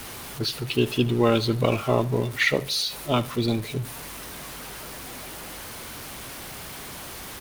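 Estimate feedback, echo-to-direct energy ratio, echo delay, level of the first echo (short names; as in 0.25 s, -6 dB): 38%, -18.5 dB, 73 ms, -19.0 dB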